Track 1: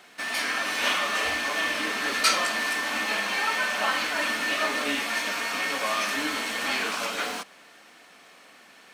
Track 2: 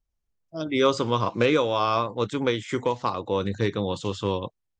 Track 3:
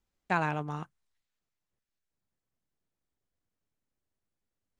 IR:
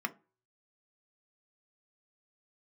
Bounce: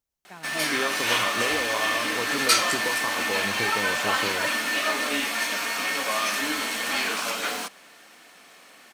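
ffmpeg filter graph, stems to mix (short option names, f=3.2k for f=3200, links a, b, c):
-filter_complex "[0:a]adelay=250,volume=0.5dB[a];[1:a]highpass=f=280:p=1,acompressor=threshold=-29dB:ratio=6,volume=1dB[b];[2:a]volume=-16.5dB[c];[a][b][c]amix=inputs=3:normalize=0,highshelf=f=7.5k:g=7.5"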